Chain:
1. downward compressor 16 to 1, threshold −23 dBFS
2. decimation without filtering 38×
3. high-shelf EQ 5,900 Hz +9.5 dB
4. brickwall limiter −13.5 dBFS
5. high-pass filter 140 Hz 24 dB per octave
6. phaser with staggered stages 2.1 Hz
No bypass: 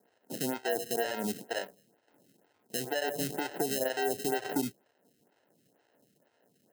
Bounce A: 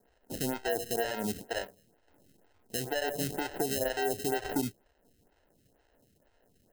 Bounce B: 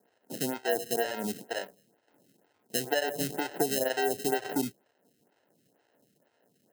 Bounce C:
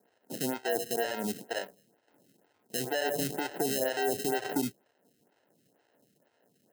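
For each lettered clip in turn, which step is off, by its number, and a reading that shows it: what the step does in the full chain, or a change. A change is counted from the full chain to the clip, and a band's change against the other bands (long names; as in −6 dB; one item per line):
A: 5, 125 Hz band +3.5 dB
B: 4, change in crest factor +2.5 dB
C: 1, average gain reduction 3.5 dB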